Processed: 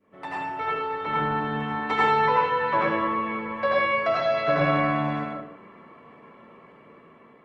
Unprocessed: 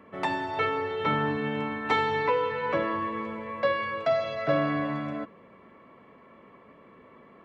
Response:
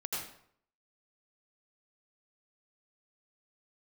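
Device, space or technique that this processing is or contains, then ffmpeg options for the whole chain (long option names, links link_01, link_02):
far-field microphone of a smart speaker: -filter_complex "[0:a]asplit=3[link_01][link_02][link_03];[link_01]afade=type=out:start_time=2.98:duration=0.02[link_04];[link_02]lowpass=5500,afade=type=in:start_time=2.98:duration=0.02,afade=type=out:start_time=3.44:duration=0.02[link_05];[link_03]afade=type=in:start_time=3.44:duration=0.02[link_06];[link_04][link_05][link_06]amix=inputs=3:normalize=0,adynamicequalizer=threshold=0.01:dfrequency=1200:dqfactor=0.77:tfrequency=1200:tqfactor=0.77:attack=5:release=100:ratio=0.375:range=2.5:mode=boostabove:tftype=bell[link_07];[1:a]atrim=start_sample=2205[link_08];[link_07][link_08]afir=irnorm=-1:irlink=0,highpass=85,dynaudnorm=framelen=620:gausssize=5:maxgain=10dB,volume=-7dB" -ar 48000 -c:a libopus -b:a 32k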